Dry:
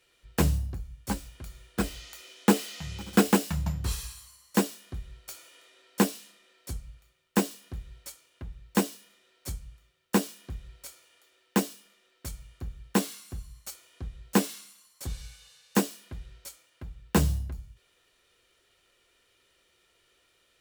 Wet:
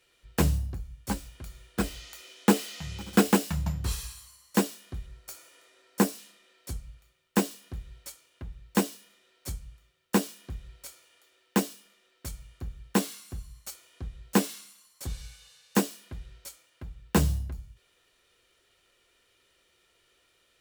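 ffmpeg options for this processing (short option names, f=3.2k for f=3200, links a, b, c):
-filter_complex "[0:a]asettb=1/sr,asplit=3[a][b][c];[a]atrim=end=5.064[d];[b]atrim=start=5.06:end=6.18,asetpts=PTS-STARTPTS,afade=t=in:d=0.004:c=qsin,afade=t=out:st=1.116:d=0.004:c=qsin,equalizer=f=3.2k:w=1.5:g=-5[e];[c]atrim=start=6.176[f];[d][e]acrossfade=d=0.004:c1=hsin:c2=qsin[g];[g][f]acrossfade=d=0.004:c1=qsin:c2=hsin"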